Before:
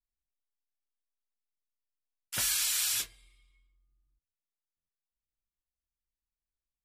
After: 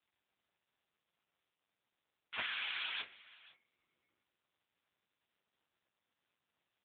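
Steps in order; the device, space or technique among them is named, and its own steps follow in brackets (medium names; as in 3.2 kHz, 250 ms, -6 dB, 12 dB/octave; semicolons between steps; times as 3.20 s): 2.35–3.05 s: high-pass 42 Hz 24 dB/octave; satellite phone (band-pass 340–3100 Hz; delay 499 ms -21 dB; trim +4.5 dB; AMR-NB 6.7 kbps 8 kHz)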